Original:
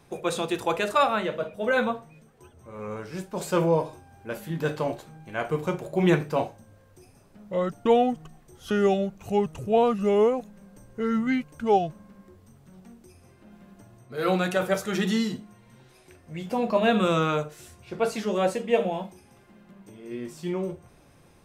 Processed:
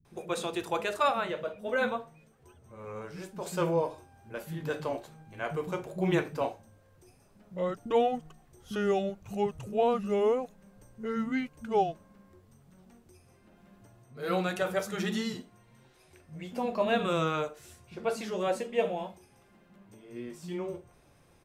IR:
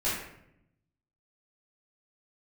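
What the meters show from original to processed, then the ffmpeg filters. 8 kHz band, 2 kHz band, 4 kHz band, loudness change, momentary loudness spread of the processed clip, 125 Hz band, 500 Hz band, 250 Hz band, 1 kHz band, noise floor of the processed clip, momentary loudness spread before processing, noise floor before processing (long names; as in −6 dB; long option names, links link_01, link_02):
−5.0 dB, −5.0 dB, −5.0 dB, −5.5 dB, 16 LU, −7.0 dB, −5.5 dB, −7.0 dB, −5.0 dB, −62 dBFS, 16 LU, −56 dBFS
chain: -filter_complex "[0:a]acrossover=split=220[link_01][link_02];[link_02]adelay=50[link_03];[link_01][link_03]amix=inputs=2:normalize=0,volume=-5dB"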